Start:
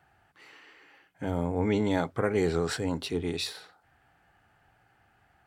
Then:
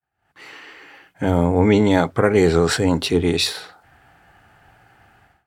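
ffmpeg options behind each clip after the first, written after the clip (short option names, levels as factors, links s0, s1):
-af "dynaudnorm=f=120:g=5:m=3.98,agate=range=0.0224:threshold=0.00251:ratio=3:detection=peak,volume=1.12"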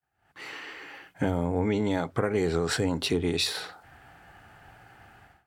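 -af "acompressor=threshold=0.0708:ratio=6"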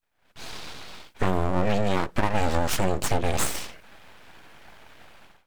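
-af "aeval=exprs='abs(val(0))':c=same,volume=1.78"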